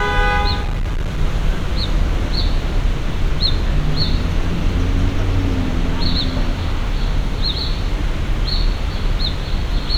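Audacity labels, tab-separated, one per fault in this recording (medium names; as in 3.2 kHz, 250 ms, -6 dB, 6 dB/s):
0.610000	1.190000	clipped -16.5 dBFS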